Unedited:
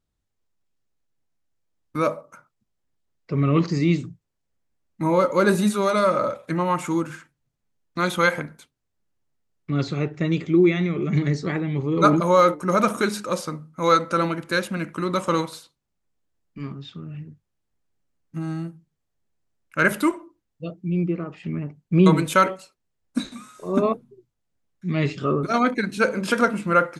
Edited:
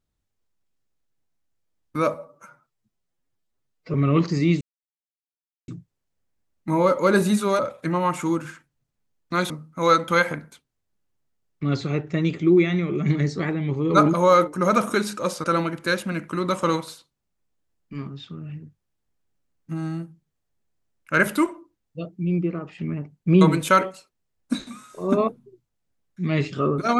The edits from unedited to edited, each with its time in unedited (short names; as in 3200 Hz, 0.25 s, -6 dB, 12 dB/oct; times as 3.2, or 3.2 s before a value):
2.14–3.34 stretch 1.5×
4.01 insert silence 1.07 s
5.92–6.24 cut
13.51–14.09 move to 8.15